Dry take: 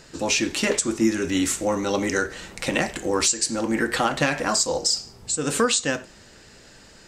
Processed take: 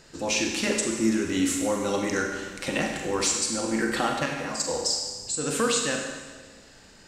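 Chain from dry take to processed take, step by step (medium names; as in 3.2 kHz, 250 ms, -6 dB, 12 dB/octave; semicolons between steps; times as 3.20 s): 4.13–4.68 s: level held to a coarse grid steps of 10 dB; Schroeder reverb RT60 1.4 s, combs from 32 ms, DRR 2 dB; trim -5 dB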